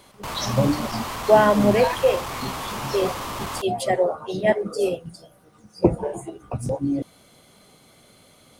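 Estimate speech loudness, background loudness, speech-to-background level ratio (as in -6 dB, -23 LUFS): -22.5 LUFS, -31.0 LUFS, 8.5 dB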